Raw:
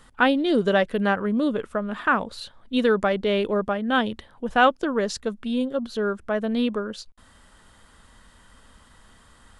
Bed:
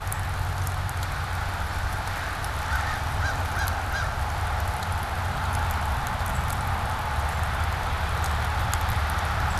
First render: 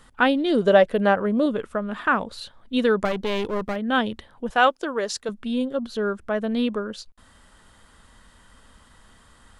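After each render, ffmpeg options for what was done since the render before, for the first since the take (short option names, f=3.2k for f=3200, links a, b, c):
-filter_complex "[0:a]asettb=1/sr,asplit=3[a][b][c];[a]atrim=end=0.624[d];[b]atrim=start=0.62:end=1.46,asetpts=PTS-STARTPTS,afade=t=in:d=0.004:c=qsin,afade=t=out:st=0.836:d=0.004:c=qsin,equalizer=f=610:t=o:w=0.91:g=7[e];[c]atrim=start=1.456[f];[d][e]acrossfade=d=0.004:c1=hsin:c2=qsin[g];[g][f]acrossfade=d=0.004:c1=qsin:c2=hsin,asettb=1/sr,asplit=3[h][i][j];[h]atrim=end=3.054[k];[i]atrim=start=3.05:end=3.76,asetpts=PTS-STARTPTS,afade=t=in:d=0.004:c=qsin,afade=t=out:st=0.706:d=0.004:c=qsin,aeval=exprs='clip(val(0),-1,0.0355)':c=same[l];[j]atrim=start=3.756[m];[k][l]acrossfade=d=0.004:c1=hsin:c2=qsin[n];[n][m]acrossfade=d=0.004:c1=qsin:c2=hsin,asettb=1/sr,asplit=3[o][p][q];[o]atrim=end=4.504[r];[p]atrim=start=4.5:end=5.29,asetpts=PTS-STARTPTS,afade=t=in:d=0.004:c=qsin,afade=t=out:st=0.786:d=0.004:c=qsin,bass=f=250:g=-14,treble=f=4k:g=3[s];[q]atrim=start=5.286[t];[r][s]acrossfade=d=0.004:c1=hsin:c2=qsin[u];[u][t]acrossfade=d=0.004:c1=qsin:c2=hsin"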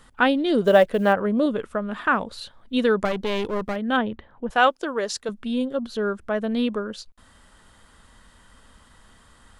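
-filter_complex "[0:a]asettb=1/sr,asplit=3[a][b][c];[a]atrim=end=0.644[d];[b]atrim=start=0.64:end=1.13,asetpts=PTS-STARTPTS,afade=t=in:d=0.004:c=qsin,afade=t=out:st=0.486:d=0.004:c=qsin,acrusher=bits=9:mode=log:mix=0:aa=0.000001[e];[c]atrim=start=1.126[f];[d][e]acrossfade=d=0.004:c1=hsin:c2=qsin[g];[g][f]acrossfade=d=0.004:c1=qsin:c2=hsin,asplit=3[h][i][j];[h]afade=t=out:st=3.96:d=0.02[k];[i]lowpass=2k,afade=t=in:st=3.96:d=0.02,afade=t=out:st=4.49:d=0.02[l];[j]afade=t=in:st=4.49:d=0.02[m];[k][l][m]amix=inputs=3:normalize=0"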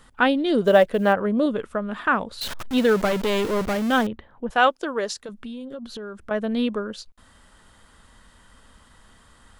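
-filter_complex "[0:a]asettb=1/sr,asplit=3[a][b][c];[a]atrim=end=2.414[d];[b]atrim=start=2.41:end=4.07,asetpts=PTS-STARTPTS,afade=t=in:d=0.004:c=qsin,afade=t=out:st=1.656:d=0.004:c=qsin,aeval=exprs='val(0)+0.5*0.0501*sgn(val(0))':c=same[e];[c]atrim=start=4.066[f];[d][e]acrossfade=d=0.004:c1=hsin:c2=qsin[g];[g][f]acrossfade=d=0.004:c1=qsin:c2=hsin,asettb=1/sr,asplit=3[h][i][j];[h]atrim=end=5.134[k];[i]atrim=start=5.13:end=6.31,asetpts=PTS-STARTPTS,afade=t=in:d=0.004:c=qsin,afade=t=out:st=1.176:d=0.004:c=qsin,acompressor=threshold=-31dB:ratio=12:attack=3.2:release=140:knee=1:detection=peak[l];[j]atrim=start=6.306[m];[k][l]acrossfade=d=0.004:c1=hsin:c2=qsin[n];[n][m]acrossfade=d=0.004:c1=qsin:c2=hsin"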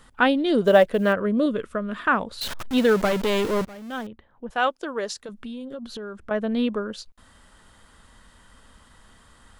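-filter_complex "[0:a]asettb=1/sr,asplit=3[a][b][c];[a]atrim=end=1.054[d];[b]atrim=start=1.05:end=2.07,asetpts=PTS-STARTPTS,afade=t=in:d=0.004:c=qsin,afade=t=out:st=1.016:d=0.004:c=qsin,equalizer=f=820:t=o:w=0.27:g=-14.5[e];[c]atrim=start=2.066[f];[d][e]acrossfade=d=0.004:c1=hsin:c2=qsin[g];[g][f]acrossfade=d=0.004:c1=qsin:c2=hsin,asettb=1/sr,asplit=3[h][i][j];[h]atrim=end=6.164[k];[i]atrim=start=6.16:end=6.81,asetpts=PTS-STARTPTS,afade=t=in:d=0.004:c=qsin,afade=t=out:st=0.646:d=0.004:c=qsin,highshelf=f=5.2k:g=-6.5[l];[j]atrim=start=6.806[m];[k][l]acrossfade=d=0.004:c1=hsin:c2=qsin[n];[n][m]acrossfade=d=0.004:c1=qsin:c2=hsin,asplit=2[o][p];[o]atrim=end=3.65,asetpts=PTS-STARTPTS,afade=t=out:st=3.646:d=0.004:c=hsin:silence=0.105925[q];[p]atrim=start=3.65,asetpts=PTS-STARTPTS,afade=t=in:d=1.88:silence=0.105925[r];[q][r]concat=n=2:v=0:a=1"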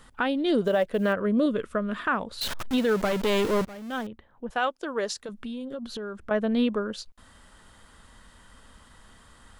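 -af "alimiter=limit=-15dB:level=0:latency=1:release=342"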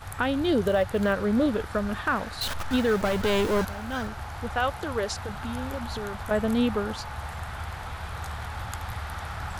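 -filter_complex "[1:a]volume=-9dB[a];[0:a][a]amix=inputs=2:normalize=0"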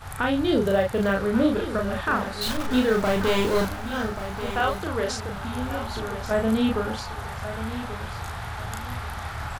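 -filter_complex "[0:a]asplit=2[a][b];[b]adelay=36,volume=-2.5dB[c];[a][c]amix=inputs=2:normalize=0,aecho=1:1:1136|2272|3408:0.266|0.0772|0.0224"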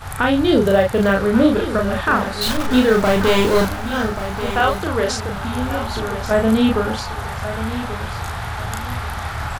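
-af "volume=7dB"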